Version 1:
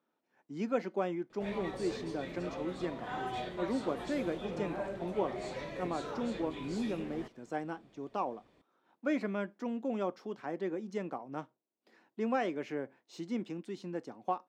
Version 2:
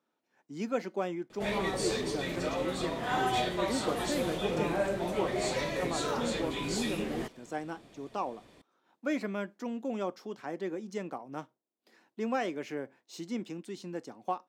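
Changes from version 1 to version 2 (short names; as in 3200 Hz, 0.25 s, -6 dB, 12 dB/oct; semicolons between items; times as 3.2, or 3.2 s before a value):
background +8.0 dB; master: remove LPF 2800 Hz 6 dB/oct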